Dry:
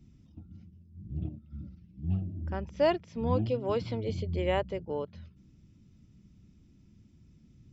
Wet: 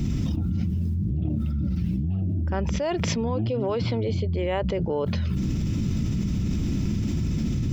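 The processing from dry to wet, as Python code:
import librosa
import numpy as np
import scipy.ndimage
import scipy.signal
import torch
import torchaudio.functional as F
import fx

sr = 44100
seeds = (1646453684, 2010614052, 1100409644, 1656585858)

y = fx.air_absorb(x, sr, metres=68.0, at=(3.26, 4.93))
y = fx.env_flatten(y, sr, amount_pct=100)
y = y * 10.0 ** (-3.5 / 20.0)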